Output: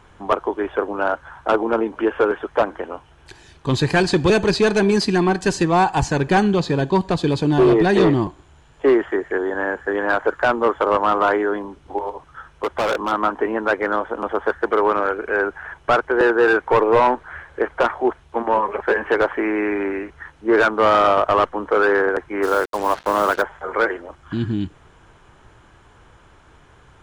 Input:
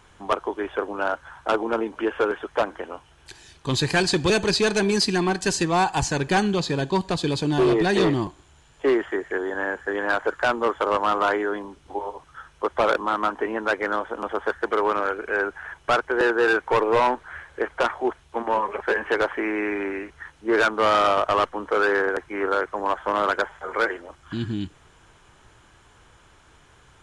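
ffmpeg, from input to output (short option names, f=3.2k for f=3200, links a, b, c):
-filter_complex "[0:a]highshelf=f=2.6k:g=-10,asettb=1/sr,asplit=3[a][b][c];[a]atrim=end=11.984[d];[b]atrim=start=11.98:end=13.12,asetpts=PTS-STARTPTS,afade=t=in:d=0.004:c=qsin,afade=t=out:st=1.136:d=0.004:c=qsin,asoftclip=type=hard:threshold=-22.5dB[e];[c]atrim=start=13.116[f];[d][e]acrossfade=d=0.004:c1=hsin:c2=qsin[g];[g][f]acrossfade=d=0.004:c1=qsin:c2=hsin,asplit=3[h][i][j];[h]afade=t=out:st=22.42:d=0.02[k];[i]acrusher=bits=5:mix=0:aa=0.5,afade=t=in:st=22.42:d=0.02,afade=t=out:st=23.41:d=0.02[l];[j]afade=t=in:st=23.41:d=0.02[m];[k][l][m]amix=inputs=3:normalize=0,volume=5.5dB"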